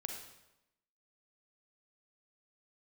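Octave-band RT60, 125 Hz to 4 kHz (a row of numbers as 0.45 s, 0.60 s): 0.90 s, 0.95 s, 0.95 s, 0.90 s, 0.85 s, 0.80 s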